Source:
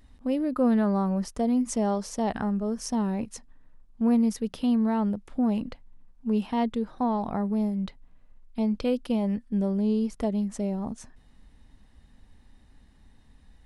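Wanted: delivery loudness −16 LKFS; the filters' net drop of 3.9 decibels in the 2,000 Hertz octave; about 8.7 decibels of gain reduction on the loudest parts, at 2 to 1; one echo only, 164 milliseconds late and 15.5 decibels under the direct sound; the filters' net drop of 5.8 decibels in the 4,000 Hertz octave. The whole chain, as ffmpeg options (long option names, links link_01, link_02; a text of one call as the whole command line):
ffmpeg -i in.wav -af "equalizer=frequency=2000:width_type=o:gain=-3.5,equalizer=frequency=4000:width_type=o:gain=-7.5,acompressor=threshold=-36dB:ratio=2,aecho=1:1:164:0.168,volume=19dB" out.wav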